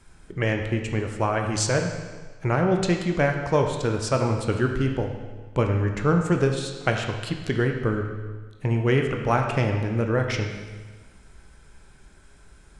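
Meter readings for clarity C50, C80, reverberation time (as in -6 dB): 5.5 dB, 7.0 dB, 1.4 s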